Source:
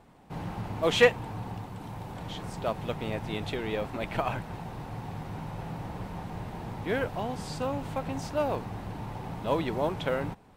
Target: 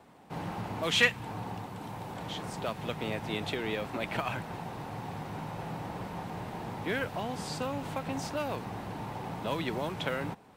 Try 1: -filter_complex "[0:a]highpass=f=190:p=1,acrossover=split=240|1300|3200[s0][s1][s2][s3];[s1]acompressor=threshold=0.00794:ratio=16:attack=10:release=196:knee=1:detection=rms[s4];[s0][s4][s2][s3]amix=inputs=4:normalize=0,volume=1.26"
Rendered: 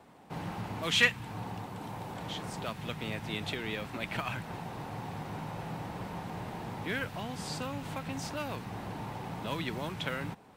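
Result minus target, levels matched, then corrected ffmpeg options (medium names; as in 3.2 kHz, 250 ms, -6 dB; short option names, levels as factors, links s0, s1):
compression: peak gain reduction +7 dB
-filter_complex "[0:a]highpass=f=190:p=1,acrossover=split=240|1300|3200[s0][s1][s2][s3];[s1]acompressor=threshold=0.0188:ratio=16:attack=10:release=196:knee=1:detection=rms[s4];[s0][s4][s2][s3]amix=inputs=4:normalize=0,volume=1.26"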